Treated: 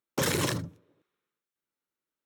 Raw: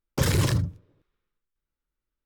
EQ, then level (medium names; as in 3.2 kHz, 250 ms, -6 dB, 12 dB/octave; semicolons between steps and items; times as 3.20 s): high-pass 220 Hz 12 dB/octave; band-stop 4.8 kHz, Q 12; 0.0 dB